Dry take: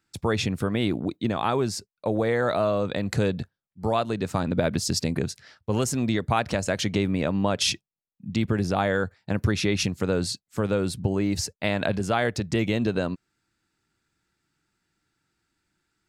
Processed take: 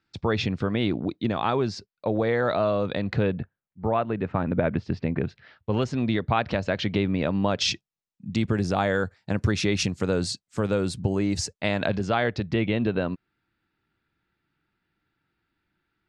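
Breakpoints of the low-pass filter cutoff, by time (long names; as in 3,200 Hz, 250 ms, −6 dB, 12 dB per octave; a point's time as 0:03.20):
low-pass filter 24 dB per octave
0:02.97 5,000 Hz
0:03.40 2,500 Hz
0:05.08 2,500 Hz
0:05.76 4,200 Hz
0:07.01 4,200 Hz
0:08.34 8,900 Hz
0:11.46 8,900 Hz
0:12.64 3,600 Hz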